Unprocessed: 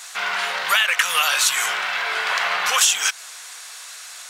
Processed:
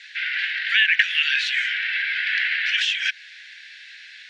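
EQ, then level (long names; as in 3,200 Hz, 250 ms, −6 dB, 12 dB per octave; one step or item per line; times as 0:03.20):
Butterworth high-pass 1,600 Hz 96 dB per octave
low-pass filter 6,000 Hz 12 dB per octave
high-frequency loss of the air 360 metres
+6.5 dB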